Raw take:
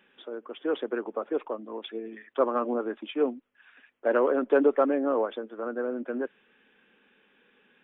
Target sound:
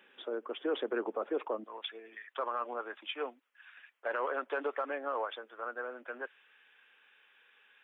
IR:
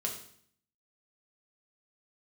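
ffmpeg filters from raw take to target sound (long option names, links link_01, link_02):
-af "asetnsamples=nb_out_samples=441:pad=0,asendcmd='1.64 highpass f 1000',highpass=310,alimiter=level_in=2dB:limit=-24dB:level=0:latency=1:release=40,volume=-2dB,volume=1.5dB"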